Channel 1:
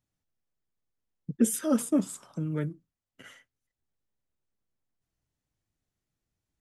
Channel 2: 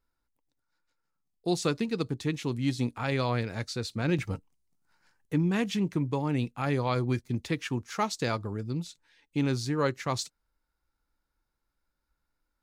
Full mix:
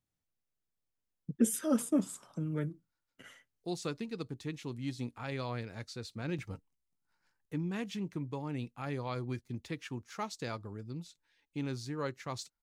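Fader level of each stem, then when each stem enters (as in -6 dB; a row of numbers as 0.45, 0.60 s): -4.0, -9.5 dB; 0.00, 2.20 s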